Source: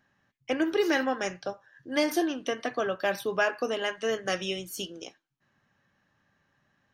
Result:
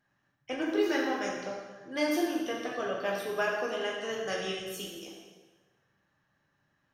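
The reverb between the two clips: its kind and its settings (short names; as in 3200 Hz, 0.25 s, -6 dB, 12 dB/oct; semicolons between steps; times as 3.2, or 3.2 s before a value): plate-style reverb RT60 1.4 s, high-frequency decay 0.85×, pre-delay 0 ms, DRR -2.5 dB; gain -7.5 dB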